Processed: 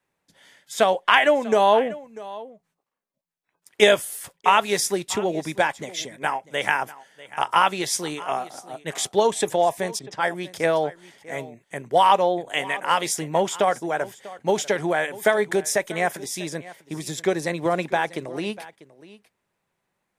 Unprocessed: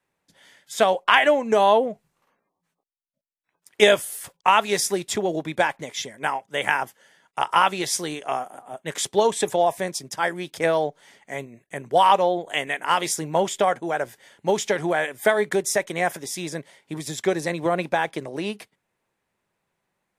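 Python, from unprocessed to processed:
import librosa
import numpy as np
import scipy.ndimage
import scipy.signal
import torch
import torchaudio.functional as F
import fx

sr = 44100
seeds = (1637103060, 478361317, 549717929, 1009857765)

y = x + 10.0 ** (-18.5 / 20.0) * np.pad(x, (int(644 * sr / 1000.0), 0))[:len(x)]
y = fx.env_lowpass(y, sr, base_hz=2200.0, full_db=-21.0, at=(9.99, 10.43))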